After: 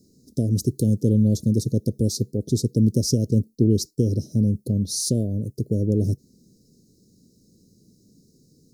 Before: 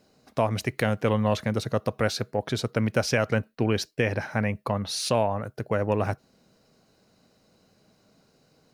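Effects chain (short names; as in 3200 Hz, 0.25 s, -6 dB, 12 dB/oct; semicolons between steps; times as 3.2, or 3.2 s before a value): inverse Chebyshev band-stop 880–2400 Hz, stop band 60 dB; gain +8 dB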